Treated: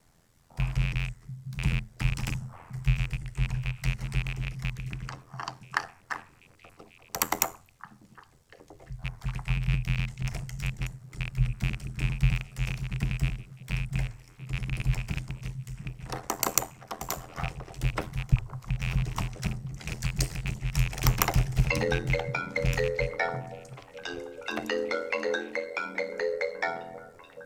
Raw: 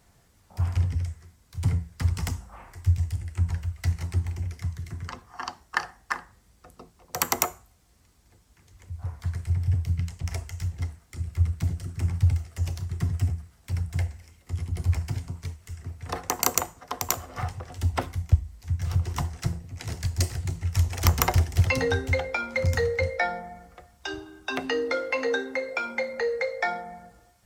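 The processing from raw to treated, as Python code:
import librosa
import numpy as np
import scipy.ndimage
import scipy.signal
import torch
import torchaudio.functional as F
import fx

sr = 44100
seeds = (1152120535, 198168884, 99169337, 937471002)

p1 = fx.rattle_buzz(x, sr, strikes_db=-28.0, level_db=-21.0)
p2 = p1 * np.sin(2.0 * np.pi * 42.0 * np.arange(len(p1)) / sr)
y = p2 + fx.echo_stepped(p2, sr, ms=689, hz=160.0, octaves=1.4, feedback_pct=70, wet_db=-9.0, dry=0)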